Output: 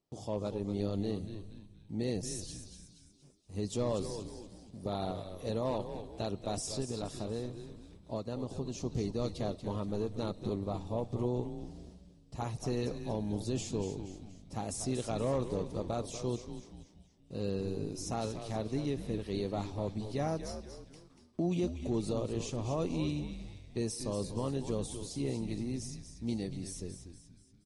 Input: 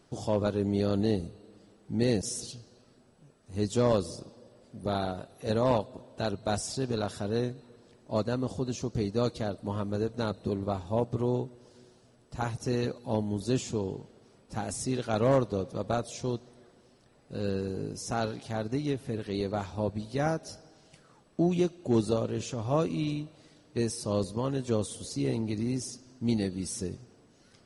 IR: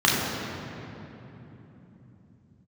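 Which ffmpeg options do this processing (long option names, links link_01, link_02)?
-filter_complex "[0:a]dynaudnorm=framelen=440:gausssize=13:maxgain=4.5dB,agate=range=-16dB:threshold=-53dB:ratio=16:detection=peak,asettb=1/sr,asplit=3[link_01][link_02][link_03];[link_01]atrim=end=6.804[link_04];[link_02]atrim=start=6.8:end=8.85,asetpts=PTS-STARTPTS,afade=type=in:duration=0.004:curve=qsin,afade=type=out:start_time=2.046:duration=0.004:curve=qsin,acompressor=threshold=-26dB:ratio=6[link_05];[link_03]atrim=start=8.846[link_06];[link_04][link_05]acrossfade=duration=0.004:curve1=hsin:curve2=qsin[link_07];[link_07][link_06]acrossfade=duration=0.004:curve1=qsin:curve2=hsin,alimiter=limit=-16.5dB:level=0:latency=1:release=45,equalizer=frequency=1600:width=2:gain=-4,bandreject=frequency=1500:width=7.3,asplit=6[link_08][link_09][link_10][link_11][link_12][link_13];[link_09]adelay=237,afreqshift=-100,volume=-9dB[link_14];[link_10]adelay=474,afreqshift=-200,volume=-16.1dB[link_15];[link_11]adelay=711,afreqshift=-300,volume=-23.3dB[link_16];[link_12]adelay=948,afreqshift=-400,volume=-30.4dB[link_17];[link_13]adelay=1185,afreqshift=-500,volume=-37.5dB[link_18];[link_08][link_14][link_15][link_16][link_17][link_18]amix=inputs=6:normalize=0,volume=-7.5dB"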